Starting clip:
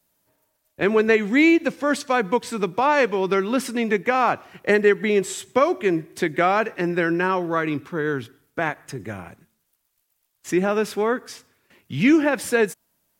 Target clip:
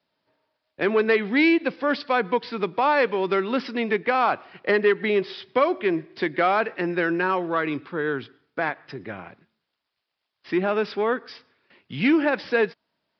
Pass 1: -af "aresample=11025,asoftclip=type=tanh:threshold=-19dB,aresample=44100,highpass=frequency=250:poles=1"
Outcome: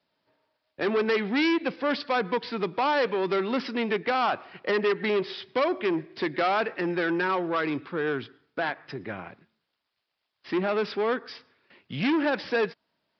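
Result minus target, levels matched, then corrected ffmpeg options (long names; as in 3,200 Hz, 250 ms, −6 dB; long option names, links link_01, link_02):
soft clipping: distortion +12 dB
-af "aresample=11025,asoftclip=type=tanh:threshold=-8.5dB,aresample=44100,highpass=frequency=250:poles=1"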